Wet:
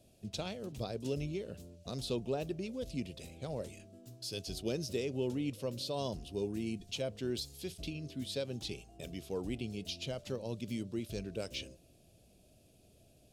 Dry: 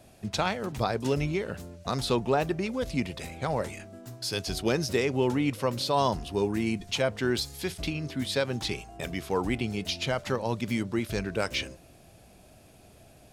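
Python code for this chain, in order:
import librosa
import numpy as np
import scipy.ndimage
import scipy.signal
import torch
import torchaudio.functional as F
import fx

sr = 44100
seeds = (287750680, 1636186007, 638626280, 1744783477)

y = fx.band_shelf(x, sr, hz=1300.0, db=-12.0, octaves=1.7)
y = y * 10.0 ** (-9.0 / 20.0)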